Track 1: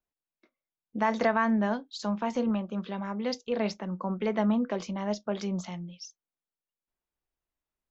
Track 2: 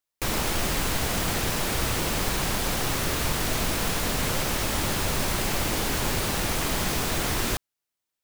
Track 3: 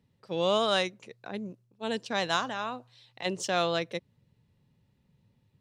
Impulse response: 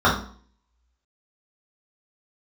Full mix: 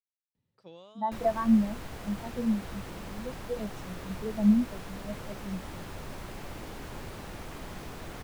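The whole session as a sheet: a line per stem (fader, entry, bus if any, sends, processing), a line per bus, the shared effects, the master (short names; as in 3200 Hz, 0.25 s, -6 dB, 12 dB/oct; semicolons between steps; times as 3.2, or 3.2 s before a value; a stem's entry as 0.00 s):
-0.5 dB, 0.00 s, no send, spectral expander 2.5:1
-13.0 dB, 0.90 s, no send, high shelf 2800 Hz -11 dB
-11.0 dB, 0.35 s, no send, compressor 3:1, threshold -31 dBFS, peak gain reduction 8 dB; auto duck -12 dB, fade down 0.35 s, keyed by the first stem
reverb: off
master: dry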